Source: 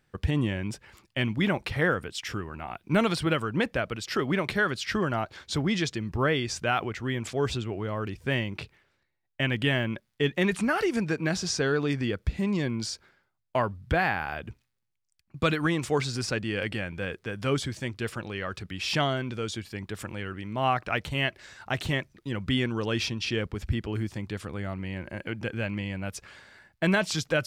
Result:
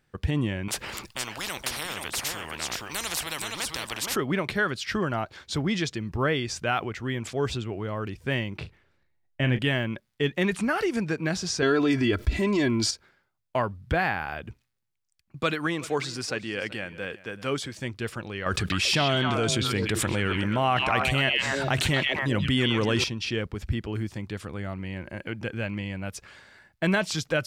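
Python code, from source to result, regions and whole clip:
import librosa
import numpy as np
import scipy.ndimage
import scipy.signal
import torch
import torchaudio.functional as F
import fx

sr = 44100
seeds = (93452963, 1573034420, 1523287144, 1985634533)

y = fx.chain(x, sr, fx.echo_single(ms=472, db=-10.0),
    fx.spectral_comp(ratio=10.0), at=(0.68, 4.16))
y = fx.chain(y, sr, fx.tilt_eq(slope=-1.5),
    fx.doubler(ms=39.0, db=-10.5), at=(8.57, 9.59))
y = fx.chain(y, sr, fx.comb(ms=3.0, depth=0.77),
    fx.env_flatten(amount_pct=50), at=(11.62, 12.91))
y = fx.chain(y, sr, fx.highpass(hz=260.0, slope=6),
    fx.echo_single(ms=380, db=-18.5), at=(15.42, 17.79))
y = fx.chain(y, sr, fx.peak_eq(hz=8600.0, db=5.5, octaves=0.97),
    fx.echo_stepped(ms=129, hz=3000.0, octaves=-1.4, feedback_pct=70, wet_db=-1.5),
    fx.env_flatten(amount_pct=70), at=(18.46, 23.04))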